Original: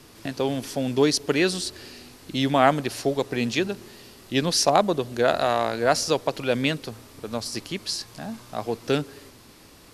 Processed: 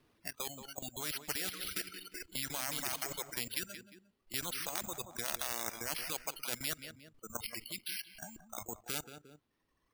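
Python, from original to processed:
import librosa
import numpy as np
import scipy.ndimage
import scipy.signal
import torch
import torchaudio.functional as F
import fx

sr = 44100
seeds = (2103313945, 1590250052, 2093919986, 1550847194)

y = fx.reverse_delay_fb(x, sr, ms=192, feedback_pct=67, wet_db=-8, at=(1.04, 3.19))
y = scipy.signal.sosfilt(scipy.signal.butter(2, 3700.0, 'lowpass', fs=sr, output='sos'), y)
y = np.repeat(y[::6], 6)[:len(y)]
y = fx.noise_reduce_blind(y, sr, reduce_db=28)
y = fx.level_steps(y, sr, step_db=14)
y = fx.echo_feedback(y, sr, ms=177, feedback_pct=26, wet_db=-17.0)
y = fx.dereverb_blind(y, sr, rt60_s=1.2)
y = fx.spectral_comp(y, sr, ratio=4.0)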